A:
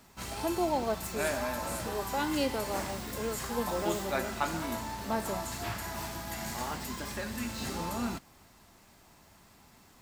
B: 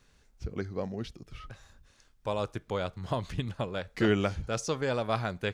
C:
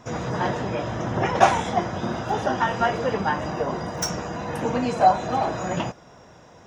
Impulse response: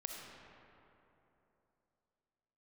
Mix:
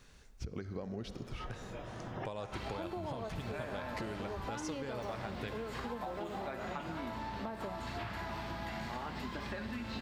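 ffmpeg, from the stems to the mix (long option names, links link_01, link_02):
-filter_complex "[0:a]adelay=2350,volume=2dB,asplit=2[link_01][link_02];[link_02]volume=-19dB[link_03];[1:a]acompressor=threshold=-37dB:ratio=4,volume=1.5dB,asplit=3[link_04][link_05][link_06];[link_05]volume=-5.5dB[link_07];[2:a]highshelf=frequency=4200:gain=12,dynaudnorm=framelen=130:gausssize=9:maxgain=11.5dB,adelay=1000,volume=-15dB,asplit=2[link_08][link_09];[link_09]volume=-21dB[link_10];[link_06]apad=whole_len=338209[link_11];[link_08][link_11]sidechaincompress=threshold=-55dB:ratio=8:attack=5.2:release=581[link_12];[link_01][link_12]amix=inputs=2:normalize=0,lowpass=frequency=4300:width=0.5412,lowpass=frequency=4300:width=1.3066,acompressor=threshold=-32dB:ratio=6,volume=0dB[link_13];[3:a]atrim=start_sample=2205[link_14];[link_03][link_07][link_10]amix=inputs=3:normalize=0[link_15];[link_15][link_14]afir=irnorm=-1:irlink=0[link_16];[link_04][link_13][link_16]amix=inputs=3:normalize=0,acompressor=threshold=-37dB:ratio=6"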